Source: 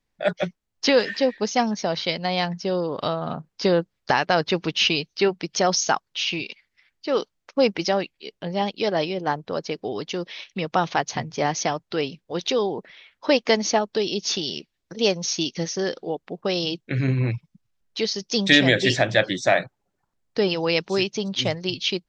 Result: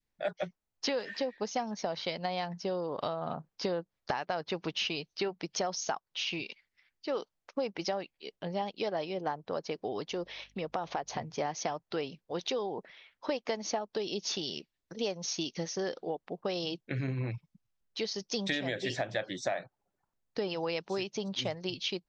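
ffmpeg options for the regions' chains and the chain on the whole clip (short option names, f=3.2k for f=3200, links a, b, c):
-filter_complex "[0:a]asettb=1/sr,asplit=3[a][b][c];[a]atrim=end=10.104[d];[b]atrim=start=10.1:end=11.22,asetpts=PTS-STARTPTS,afade=t=in:d=0.004:c=qsin,afade=t=out:st=1.116:d=0.004:c=qsin,equalizer=f=530:w=0.79:g=5,acompressor=threshold=-27dB:ratio=2:attack=3.2:release=140:knee=1:detection=peak,aeval=exprs='val(0)+0.00126*(sin(2*PI*50*n/s)+sin(2*PI*2*50*n/s)/2+sin(2*PI*3*50*n/s)/3+sin(2*PI*4*50*n/s)/4+sin(2*PI*5*50*n/s)/5)':c=same[e];[c]atrim=start=11.216[f];[d][e]acrossfade=d=0.004:c1=hsin:c2=qsin[g];[g][f]acrossfade=d=0.004:c1=qsin:c2=hsin,adynamicequalizer=threshold=0.02:dfrequency=770:dqfactor=0.88:tfrequency=770:tqfactor=0.88:attack=5:release=100:ratio=0.375:range=3:mode=boostabove:tftype=bell,acompressor=threshold=-22dB:ratio=6,volume=-8dB"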